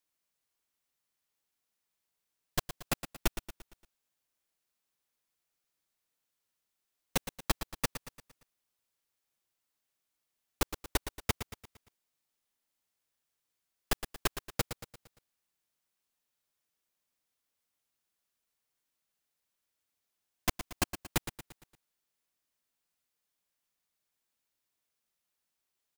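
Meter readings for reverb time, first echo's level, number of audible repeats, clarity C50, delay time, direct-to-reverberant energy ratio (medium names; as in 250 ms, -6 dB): no reverb, -11.0 dB, 4, no reverb, 115 ms, no reverb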